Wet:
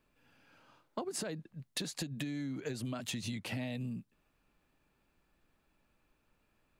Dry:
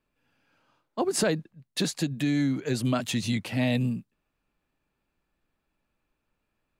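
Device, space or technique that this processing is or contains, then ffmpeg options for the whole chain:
serial compression, leveller first: -af "acompressor=threshold=-28dB:ratio=3,acompressor=threshold=-40dB:ratio=8,volume=4dB"

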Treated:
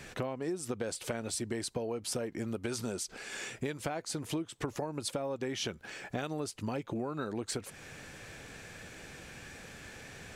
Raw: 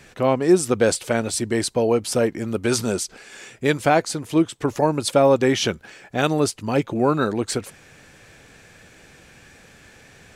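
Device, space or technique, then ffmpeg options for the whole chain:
serial compression, leveller first: -af "acompressor=threshold=-21dB:ratio=3,acompressor=threshold=-34dB:ratio=5"

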